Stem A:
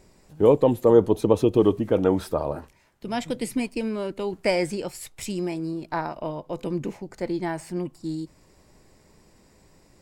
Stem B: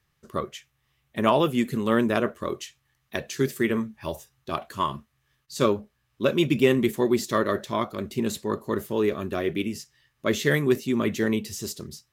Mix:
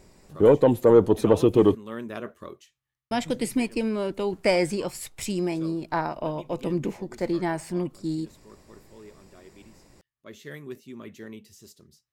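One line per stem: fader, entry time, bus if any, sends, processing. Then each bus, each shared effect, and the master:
+1.5 dB, 0.00 s, muted 1.75–3.11, no send, soft clip -7.5 dBFS, distortion -20 dB
2.42 s -9 dB -> 2.63 s -17 dB, 0.00 s, no send, auto duck -7 dB, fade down 0.20 s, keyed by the first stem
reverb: off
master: dry

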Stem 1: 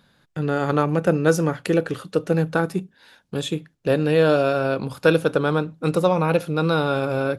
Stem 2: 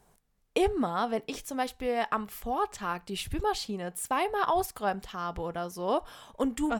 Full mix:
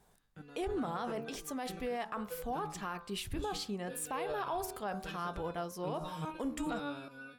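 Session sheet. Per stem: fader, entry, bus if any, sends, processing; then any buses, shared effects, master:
-8.0 dB, 0.00 s, no send, bell 590 Hz -6 dB 1.2 oct; stepped resonator 2.4 Hz 96–500 Hz
-3.5 dB, 0.00 s, no send, de-hum 75.11 Hz, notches 21; vibrato 4.2 Hz 29 cents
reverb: off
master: limiter -28.5 dBFS, peak gain reduction 11 dB

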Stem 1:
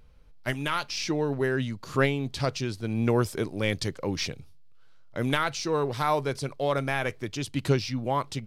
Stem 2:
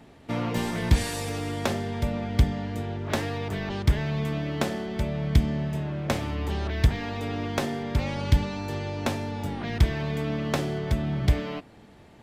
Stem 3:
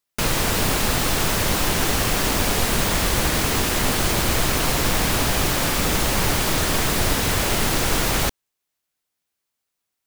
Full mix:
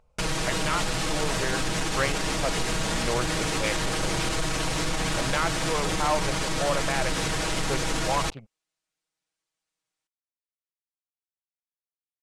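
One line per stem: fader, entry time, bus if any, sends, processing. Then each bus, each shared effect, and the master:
-9.5 dB, 0.00 s, no bus, no send, Wiener smoothing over 25 samples; band shelf 1300 Hz +13.5 dB 3 oct
off
-5.5 dB, 0.00 s, bus A, no send, LPF 9200 Hz 24 dB/oct
bus A: 0.0 dB, comb 6.3 ms, depth 85%; limiter -16.5 dBFS, peak gain reduction 6.5 dB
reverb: off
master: soft clip -16.5 dBFS, distortion -17 dB

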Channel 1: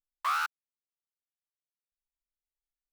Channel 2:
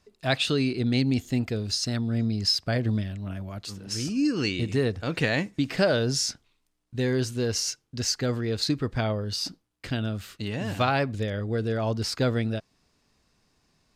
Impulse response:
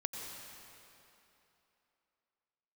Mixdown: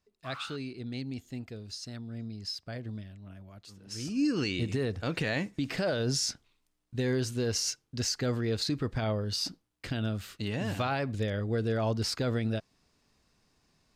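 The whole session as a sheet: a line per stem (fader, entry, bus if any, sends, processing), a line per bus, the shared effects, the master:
-10.0 dB, 0.00 s, no send, echo send -7.5 dB, photocell phaser 0.86 Hz; auto duck -7 dB, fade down 0.25 s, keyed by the second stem
3.73 s -13.5 dB -> 4.26 s -2 dB, 0.00 s, no send, no echo send, dry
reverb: off
echo: echo 0.103 s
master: limiter -20.5 dBFS, peak gain reduction 9 dB

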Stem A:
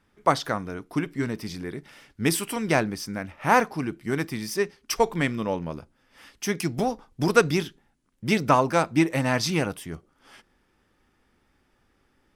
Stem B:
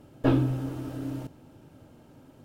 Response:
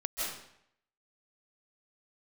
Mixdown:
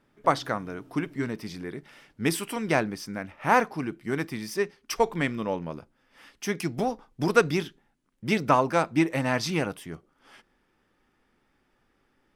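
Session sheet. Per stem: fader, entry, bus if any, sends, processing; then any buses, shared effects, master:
-1.5 dB, 0.00 s, no send, tone controls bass -1 dB, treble -4 dB
-17.5 dB, 0.00 s, no send, compressor 2:1, threshold -30 dBFS, peak gain reduction 7.5 dB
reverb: off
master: bell 66 Hz -8.5 dB 0.84 oct

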